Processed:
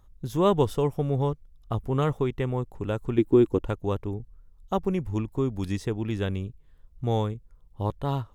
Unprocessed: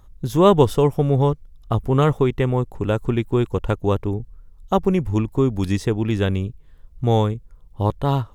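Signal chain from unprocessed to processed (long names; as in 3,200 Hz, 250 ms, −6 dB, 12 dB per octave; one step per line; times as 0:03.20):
0:03.18–0:03.65: parametric band 310 Hz +14 dB 0.92 octaves
level −8 dB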